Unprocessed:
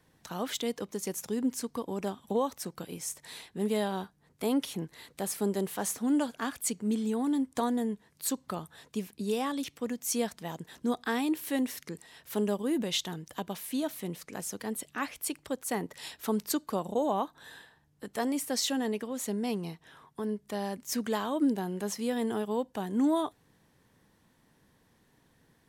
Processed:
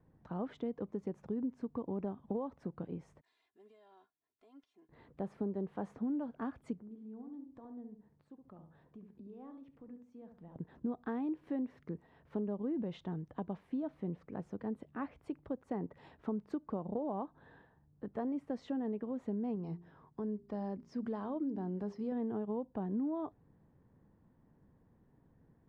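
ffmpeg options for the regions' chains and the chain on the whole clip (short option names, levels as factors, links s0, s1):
-filter_complex "[0:a]asettb=1/sr,asplit=3[s0][s1][s2];[s0]atrim=end=3.214[s3];[s1]atrim=start=3.21:end=4.89,asetpts=PTS-STARTPTS,afade=t=in:d=0.004:c=qsin,afade=t=out:st=1.676:d=0.004:c=qsin,bandpass=f=7100:t=q:w=1.1,aecho=1:1:2.9:0.85,atrim=end_sample=74088,acompressor=threshold=0.00398:ratio=10:attack=3.2:release=140:knee=1:detection=peak[s4];[s2]atrim=start=4.886[s5];[s3][s4]acrossfade=d=0.004:c1=hsin:c2=qsin[s6];[s6][s5]acrossfade=d=0.004:c1=qsin:c2=hsin,asettb=1/sr,asplit=3[s7][s8][s9];[s7]atrim=end=6.804[s10];[s8]atrim=start=6.8:end=10.56,asetpts=PTS-STARTPTS,afade=t=in:d=0.004:c=qsin,afade=t=out:st=3.756:d=0.004:c=qsin,acompressor=threshold=0.00398:ratio=3:attack=3.2:release=140:knee=1:detection=peak,flanger=delay=5.6:depth=2.9:regen=83:speed=1.4:shape=sinusoidal,asplit=2[s11][s12];[s12]adelay=69,lowpass=f=1100:p=1,volume=0.501,asplit=2[s13][s14];[s14]adelay=69,lowpass=f=1100:p=1,volume=0.33,asplit=2[s15][s16];[s16]adelay=69,lowpass=f=1100:p=1,volume=0.33,asplit=2[s17][s18];[s18]adelay=69,lowpass=f=1100:p=1,volume=0.33[s19];[s11][s13][s15][s17][s19]amix=inputs=5:normalize=0,atrim=end_sample=165816[s20];[s9]atrim=start=10.556[s21];[s10][s20]acrossfade=d=0.004:c1=hsin:c2=qsin[s22];[s22][s21]acrossfade=d=0.004:c1=qsin:c2=hsin,asettb=1/sr,asplit=3[s23][s24][s25];[s23]atrim=end=19.554[s26];[s24]atrim=start=19.55:end=22.12,asetpts=PTS-STARTPTS,afade=t=in:d=0.004:c=qsin,afade=t=out:st=2.566:d=0.004:c=qsin,equalizer=f=5100:w=3:g=14.5,bandreject=f=57.5:t=h:w=4,bandreject=f=115:t=h:w=4,bandreject=f=172.5:t=h:w=4,bandreject=f=230:t=h:w=4,bandreject=f=287.5:t=h:w=4,bandreject=f=345:t=h:w=4,bandreject=f=402.5:t=h:w=4,acompressor=threshold=0.0178:ratio=1.5:attack=3.2:release=140:knee=1:detection=peak[s27];[s25]atrim=start=22.116[s28];[s26][s27]acrossfade=d=0.004:c1=hsin:c2=qsin[s29];[s29][s28]acrossfade=d=0.004:c1=qsin:c2=hsin,lowpass=1100,lowshelf=f=320:g=8.5,acompressor=threshold=0.0398:ratio=6,volume=0.531"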